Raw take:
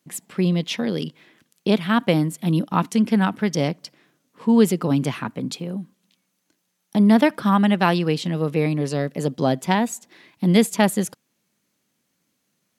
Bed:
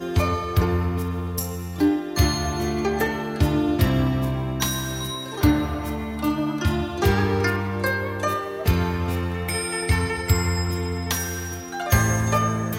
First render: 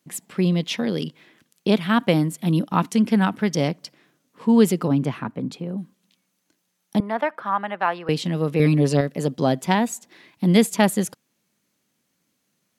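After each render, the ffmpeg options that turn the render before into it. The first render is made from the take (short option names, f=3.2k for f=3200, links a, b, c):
-filter_complex "[0:a]asettb=1/sr,asplit=3[a][b][c];[a]atrim=end=4.884[d];[b]atrim=start=4.88:end=5.78,asetpts=PTS-STARTPTS,afade=t=in:d=0.004:c=qsin,afade=t=out:st=0.896:d=0.004:c=qsin,highshelf=f=2.5k:g=-11.5[e];[c]atrim=start=5.776[f];[d][e]acrossfade=d=0.004:c1=hsin:c2=qsin[g];[g][f]acrossfade=d=0.004:c1=qsin:c2=hsin,asettb=1/sr,asplit=3[h][i][j];[h]atrim=end=7.004[k];[i]atrim=start=7:end=8.09,asetpts=PTS-STARTPTS,afade=t=in:d=0.004:c=qsin,afade=t=out:st=1.086:d=0.004:c=qsin,acrossover=split=540 2100:gain=0.0891 1 0.1[l][m][n];[l][m][n]amix=inputs=3:normalize=0[o];[j]atrim=start=8.086[p];[k][o]acrossfade=d=0.004:c1=hsin:c2=qsin[q];[q][p]acrossfade=d=0.004:c1=qsin:c2=hsin,asettb=1/sr,asplit=3[r][s][t];[r]atrim=end=8.594[u];[s]atrim=start=8.59:end=9.01,asetpts=PTS-STARTPTS,afade=t=in:d=0.004:c=qsin,afade=t=out:st=0.416:d=0.004:c=qsin,aecho=1:1:7.2:0.96,atrim=end_sample=18522[v];[t]atrim=start=9.006[w];[u][v]acrossfade=d=0.004:c1=hsin:c2=qsin[x];[x][w]acrossfade=d=0.004:c1=qsin:c2=hsin"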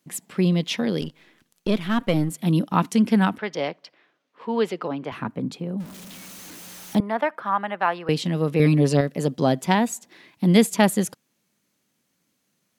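-filter_complex "[0:a]asettb=1/sr,asplit=3[a][b][c];[a]atrim=end=1.014[d];[b]atrim=start=1.01:end=2.3,asetpts=PTS-STARTPTS,afade=t=in:d=0.004:c=qsin,afade=t=out:st=1.286:d=0.004:c=qsin,aeval=exprs='if(lt(val(0),0),0.447*val(0),val(0))':c=same[e];[c]atrim=start=2.296[f];[d][e]acrossfade=d=0.004:c1=hsin:c2=qsin[g];[g][f]acrossfade=d=0.004:c1=qsin:c2=hsin,asettb=1/sr,asplit=3[h][i][j];[h]atrim=end=3.384[k];[i]atrim=start=3.38:end=5.12,asetpts=PTS-STARTPTS,afade=t=in:d=0.004:c=qsin,afade=t=out:st=1.736:d=0.004:c=qsin,acrossover=split=390 4300:gain=0.141 1 0.0794[l][m][n];[l][m][n]amix=inputs=3:normalize=0[o];[j]atrim=start=5.116[p];[k][o]acrossfade=d=0.004:c1=hsin:c2=qsin[q];[q][p]acrossfade=d=0.004:c1=qsin:c2=hsin,asettb=1/sr,asplit=3[r][s][t];[r]atrim=end=5.804[u];[s]atrim=start=5.8:end=6.99,asetpts=PTS-STARTPTS,afade=t=in:d=0.004:c=qsin,afade=t=out:st=1.186:d=0.004:c=qsin,aeval=exprs='val(0)+0.5*0.0168*sgn(val(0))':c=same[v];[t]atrim=start=6.986[w];[u][v]acrossfade=d=0.004:c1=hsin:c2=qsin[x];[x][w]acrossfade=d=0.004:c1=qsin:c2=hsin"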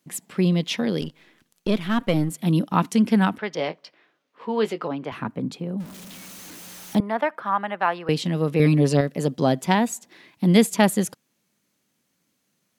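-filter_complex "[0:a]asettb=1/sr,asplit=3[a][b][c];[a]atrim=end=3.554[d];[b]atrim=start=3.55:end=4.88,asetpts=PTS-STARTPTS,afade=t=in:d=0.004:c=qsin,afade=t=out:st=1.326:d=0.004:c=qsin,asplit=2[e][f];[f]adelay=19,volume=-10.5dB[g];[e][g]amix=inputs=2:normalize=0,atrim=end_sample=58653[h];[c]atrim=start=4.876[i];[d][h]acrossfade=d=0.004:c1=hsin:c2=qsin[j];[j][i]acrossfade=d=0.004:c1=qsin:c2=hsin"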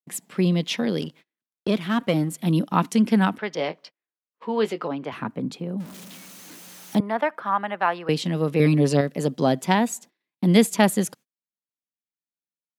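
-af "agate=range=-35dB:threshold=-44dB:ratio=16:detection=peak,highpass=120"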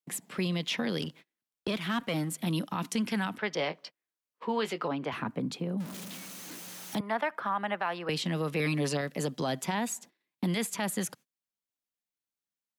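-filter_complex "[0:a]acrossover=split=140|840|2500[a][b][c][d];[a]acompressor=threshold=-41dB:ratio=4[e];[b]acompressor=threshold=-32dB:ratio=4[f];[c]acompressor=threshold=-29dB:ratio=4[g];[d]acompressor=threshold=-34dB:ratio=4[h];[e][f][g][h]amix=inputs=4:normalize=0,alimiter=limit=-21dB:level=0:latency=1:release=29"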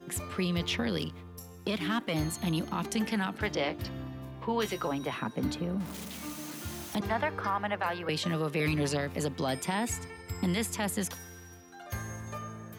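-filter_complex "[1:a]volume=-19dB[a];[0:a][a]amix=inputs=2:normalize=0"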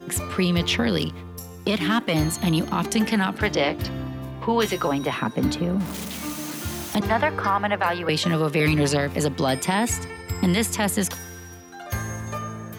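-af "volume=9dB"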